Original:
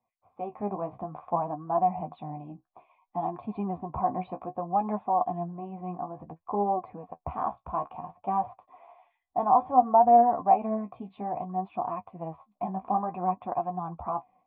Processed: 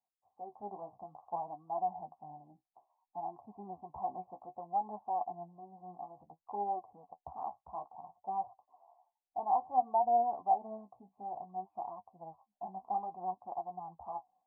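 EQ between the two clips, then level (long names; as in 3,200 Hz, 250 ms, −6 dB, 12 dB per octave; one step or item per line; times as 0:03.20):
transistor ladder low-pass 910 Hz, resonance 70%
dynamic equaliser 380 Hz, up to +6 dB, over −52 dBFS, Q 5.1
−8.0 dB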